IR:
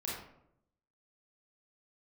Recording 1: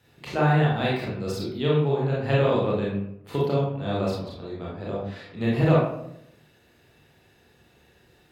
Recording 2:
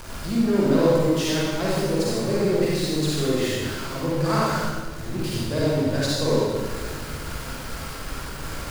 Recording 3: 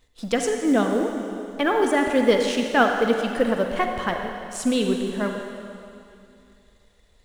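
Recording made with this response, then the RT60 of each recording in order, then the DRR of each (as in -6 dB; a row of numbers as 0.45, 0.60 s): 1; 0.75, 1.5, 2.6 s; -6.0, -7.0, 3.0 dB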